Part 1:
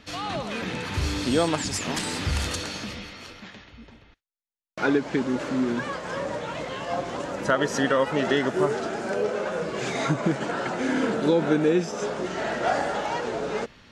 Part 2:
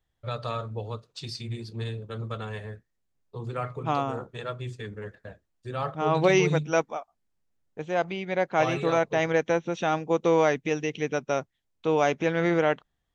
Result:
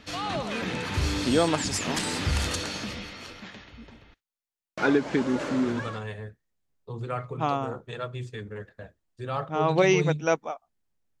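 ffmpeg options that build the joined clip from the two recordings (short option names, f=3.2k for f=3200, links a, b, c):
-filter_complex "[0:a]apad=whole_dur=11.2,atrim=end=11.2,atrim=end=6.08,asetpts=PTS-STARTPTS[a];[1:a]atrim=start=1.9:end=7.66,asetpts=PTS-STARTPTS[b];[a][b]acrossfade=d=0.64:c1=qsin:c2=qsin"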